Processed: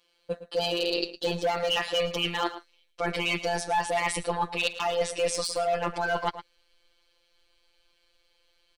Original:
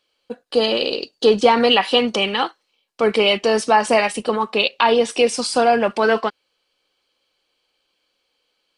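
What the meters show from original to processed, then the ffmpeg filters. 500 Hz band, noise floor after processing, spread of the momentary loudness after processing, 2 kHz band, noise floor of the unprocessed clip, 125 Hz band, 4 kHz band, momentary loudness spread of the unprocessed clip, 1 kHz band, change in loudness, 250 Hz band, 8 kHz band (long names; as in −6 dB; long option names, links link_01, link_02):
−11.5 dB, −69 dBFS, 7 LU, −8.5 dB, −72 dBFS, can't be measured, −9.5 dB, 8 LU, −10.0 dB, −10.5 dB, −13.5 dB, −5.0 dB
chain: -filter_complex "[0:a]afftfilt=real='hypot(re,im)*cos(PI*b)':imag='0':win_size=1024:overlap=0.75,asubboost=boost=12:cutoff=54,asoftclip=type=hard:threshold=-12.5dB,areverse,acompressor=threshold=-28dB:ratio=10,areverse,asplit=2[link_01][link_02];[link_02]adelay=110.8,volume=-13dB,highshelf=frequency=4000:gain=-2.49[link_03];[link_01][link_03]amix=inputs=2:normalize=0,volume=4.5dB"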